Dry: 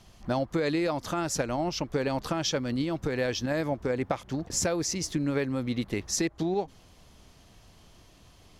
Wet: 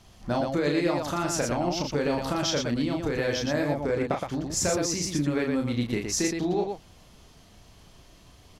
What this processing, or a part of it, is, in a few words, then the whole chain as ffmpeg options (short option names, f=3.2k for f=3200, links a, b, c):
slapback doubling: -filter_complex "[0:a]asplit=3[a][b][c];[b]adelay=34,volume=-4dB[d];[c]adelay=118,volume=-4.5dB[e];[a][d][e]amix=inputs=3:normalize=0"